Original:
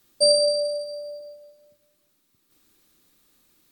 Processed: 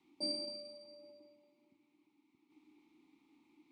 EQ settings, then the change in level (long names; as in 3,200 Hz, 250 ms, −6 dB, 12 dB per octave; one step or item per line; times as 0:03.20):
high-shelf EQ 7,300 Hz −6.5 dB
dynamic equaliser 460 Hz, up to −6 dB, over −34 dBFS, Q 1.4
formant filter u
+11.0 dB